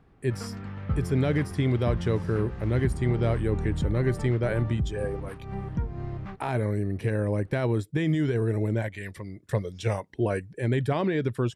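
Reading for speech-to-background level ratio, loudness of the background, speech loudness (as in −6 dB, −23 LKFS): 6.0 dB, −34.0 LKFS, −28.0 LKFS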